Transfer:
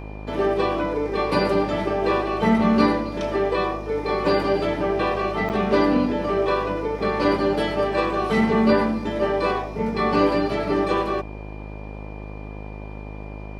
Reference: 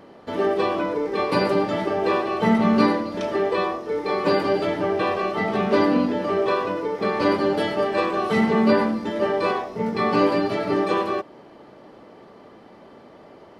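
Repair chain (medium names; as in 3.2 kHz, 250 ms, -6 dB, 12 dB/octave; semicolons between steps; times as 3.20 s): de-hum 51.8 Hz, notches 20; band-stop 2.4 kHz, Q 30; interpolate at 5.49 s, 8.2 ms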